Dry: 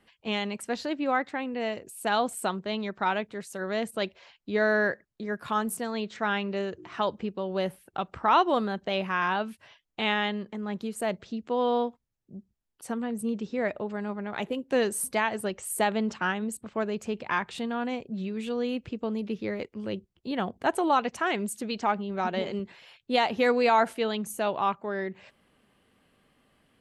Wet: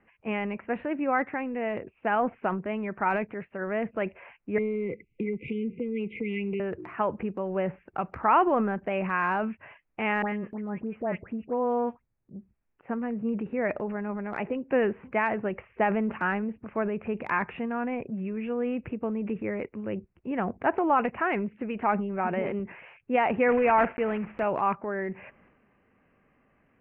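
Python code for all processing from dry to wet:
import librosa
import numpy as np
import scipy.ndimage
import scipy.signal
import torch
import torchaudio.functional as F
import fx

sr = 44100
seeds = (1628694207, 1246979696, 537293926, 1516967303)

y = fx.chain(x, sr, fx.brickwall_bandstop(low_hz=520.0, high_hz=2000.0),
    fx.high_shelf(hz=6100.0, db=7.0),
    fx.band_squash(depth_pct=100), at=(4.58, 6.6))
y = fx.chain(y, sr, fx.air_absorb(metres=470.0),
    fx.dispersion(late='highs', ms=90.0, hz=1900.0), at=(10.22, 12.36))
y = fx.chain(y, sr, fx.block_float(bits=3),
    fx.air_absorb(metres=87.0), at=(23.48, 24.44))
y = scipy.signal.sosfilt(scipy.signal.butter(12, 2600.0, 'lowpass', fs=sr, output='sos'), y)
y = fx.transient(y, sr, attack_db=1, sustain_db=7)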